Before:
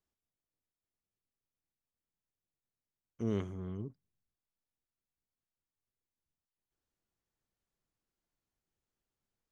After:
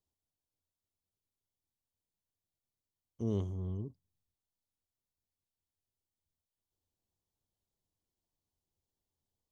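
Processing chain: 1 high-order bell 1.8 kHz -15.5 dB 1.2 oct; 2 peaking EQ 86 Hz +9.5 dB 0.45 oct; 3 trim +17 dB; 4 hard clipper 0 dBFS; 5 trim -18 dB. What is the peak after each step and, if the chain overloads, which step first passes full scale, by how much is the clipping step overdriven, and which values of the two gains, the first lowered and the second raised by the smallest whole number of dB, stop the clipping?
-22.0 dBFS, -21.5 dBFS, -4.5 dBFS, -4.5 dBFS, -22.5 dBFS; nothing clips

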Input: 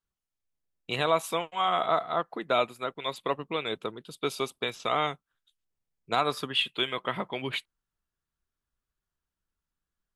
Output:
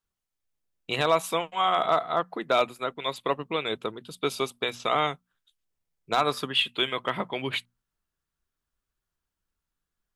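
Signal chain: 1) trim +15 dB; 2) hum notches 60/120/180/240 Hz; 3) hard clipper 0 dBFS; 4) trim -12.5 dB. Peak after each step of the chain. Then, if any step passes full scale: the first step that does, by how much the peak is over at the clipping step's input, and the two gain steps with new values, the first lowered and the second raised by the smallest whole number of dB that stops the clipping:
+5.5 dBFS, +5.5 dBFS, 0.0 dBFS, -12.5 dBFS; step 1, 5.5 dB; step 1 +9 dB, step 4 -6.5 dB

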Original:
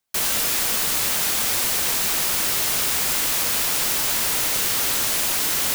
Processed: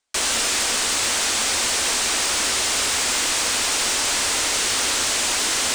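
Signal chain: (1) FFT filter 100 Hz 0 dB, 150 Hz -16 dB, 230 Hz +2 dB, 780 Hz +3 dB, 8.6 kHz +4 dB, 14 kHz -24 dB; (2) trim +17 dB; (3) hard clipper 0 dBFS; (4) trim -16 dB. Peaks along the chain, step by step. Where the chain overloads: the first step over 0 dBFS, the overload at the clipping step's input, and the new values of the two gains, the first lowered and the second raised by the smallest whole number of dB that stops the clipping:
-9.0 dBFS, +8.0 dBFS, 0.0 dBFS, -16.0 dBFS; step 2, 8.0 dB; step 2 +9 dB, step 4 -8 dB

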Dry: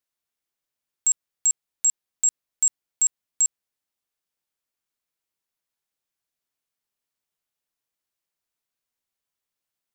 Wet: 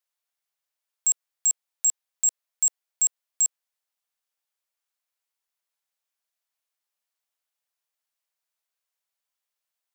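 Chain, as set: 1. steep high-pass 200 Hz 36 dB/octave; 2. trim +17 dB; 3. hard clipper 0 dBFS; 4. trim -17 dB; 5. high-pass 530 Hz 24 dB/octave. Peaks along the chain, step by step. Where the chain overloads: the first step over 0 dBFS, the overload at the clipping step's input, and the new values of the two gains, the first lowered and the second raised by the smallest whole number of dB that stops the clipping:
-14.0 dBFS, +3.0 dBFS, 0.0 dBFS, -17.0 dBFS, -16.0 dBFS; step 2, 3.0 dB; step 2 +14 dB, step 4 -14 dB

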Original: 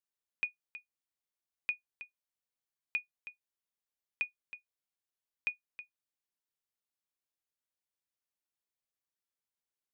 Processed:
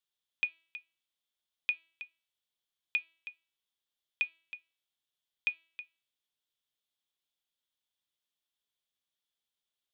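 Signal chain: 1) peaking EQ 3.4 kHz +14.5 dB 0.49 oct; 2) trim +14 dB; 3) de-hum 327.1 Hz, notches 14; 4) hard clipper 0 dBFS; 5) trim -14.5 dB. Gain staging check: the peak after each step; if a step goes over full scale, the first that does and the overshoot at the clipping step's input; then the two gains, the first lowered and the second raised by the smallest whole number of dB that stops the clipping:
-16.5 dBFS, -2.5 dBFS, -2.5 dBFS, -2.5 dBFS, -17.0 dBFS; nothing clips

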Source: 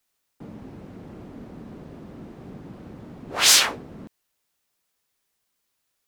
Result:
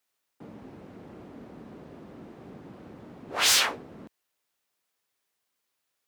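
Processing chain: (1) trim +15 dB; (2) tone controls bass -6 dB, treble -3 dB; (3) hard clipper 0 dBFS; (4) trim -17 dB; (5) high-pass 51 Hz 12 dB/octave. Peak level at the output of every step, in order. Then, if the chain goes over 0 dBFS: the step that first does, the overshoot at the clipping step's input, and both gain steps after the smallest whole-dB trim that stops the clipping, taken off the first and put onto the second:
+12.0 dBFS, +10.0 dBFS, 0.0 dBFS, -17.0 dBFS, -16.5 dBFS; step 1, 10.0 dB; step 1 +5 dB, step 4 -7 dB

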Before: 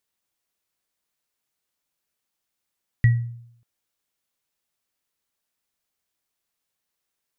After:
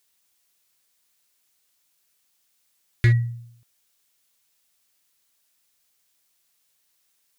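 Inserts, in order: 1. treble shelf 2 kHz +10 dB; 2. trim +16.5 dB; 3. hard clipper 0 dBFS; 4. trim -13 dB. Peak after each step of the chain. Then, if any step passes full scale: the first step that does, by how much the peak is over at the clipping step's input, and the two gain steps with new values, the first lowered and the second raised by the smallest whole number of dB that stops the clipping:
-7.0 dBFS, +9.5 dBFS, 0.0 dBFS, -13.0 dBFS; step 2, 9.5 dB; step 2 +6.5 dB, step 4 -3 dB

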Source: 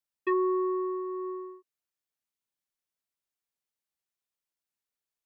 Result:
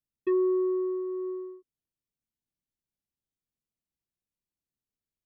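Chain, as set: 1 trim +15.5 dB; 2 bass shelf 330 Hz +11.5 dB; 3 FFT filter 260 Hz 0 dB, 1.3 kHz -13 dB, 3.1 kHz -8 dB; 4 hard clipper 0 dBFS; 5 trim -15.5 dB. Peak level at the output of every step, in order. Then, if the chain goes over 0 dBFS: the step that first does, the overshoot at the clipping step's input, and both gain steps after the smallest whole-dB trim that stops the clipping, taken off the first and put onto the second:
-3.5 dBFS, -1.0 dBFS, -3.5 dBFS, -3.5 dBFS, -19.0 dBFS; nothing clips

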